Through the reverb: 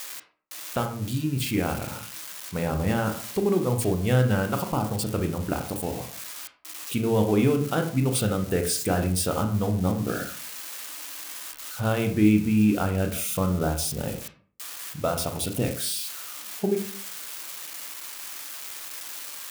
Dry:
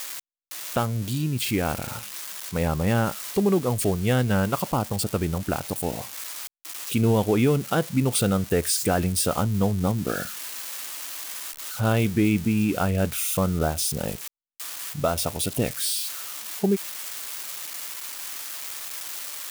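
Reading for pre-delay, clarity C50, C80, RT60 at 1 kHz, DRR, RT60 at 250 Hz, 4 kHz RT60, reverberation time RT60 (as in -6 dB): 20 ms, 10.0 dB, 14.0 dB, 0.45 s, 5.0 dB, 0.55 s, 0.30 s, 0.45 s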